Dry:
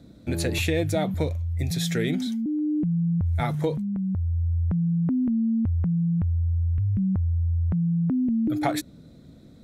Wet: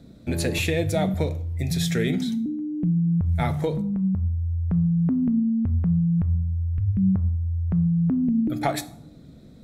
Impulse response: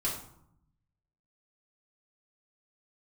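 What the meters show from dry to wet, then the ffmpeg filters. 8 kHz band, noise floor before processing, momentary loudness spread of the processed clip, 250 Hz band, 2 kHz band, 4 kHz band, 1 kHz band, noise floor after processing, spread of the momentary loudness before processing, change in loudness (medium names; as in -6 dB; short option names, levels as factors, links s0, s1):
no reading, -49 dBFS, 5 LU, +1.5 dB, +1.5 dB, +1.0 dB, +1.5 dB, -47 dBFS, 4 LU, +1.5 dB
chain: -filter_complex "[0:a]asplit=2[s0][s1];[1:a]atrim=start_sample=2205[s2];[s1][s2]afir=irnorm=-1:irlink=0,volume=0.2[s3];[s0][s3]amix=inputs=2:normalize=0"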